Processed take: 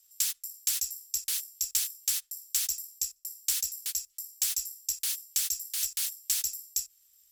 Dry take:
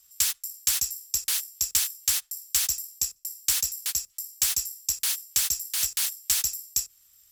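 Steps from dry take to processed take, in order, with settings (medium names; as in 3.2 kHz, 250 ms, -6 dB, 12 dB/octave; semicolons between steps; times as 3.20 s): amplifier tone stack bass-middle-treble 10-0-10; trim -4 dB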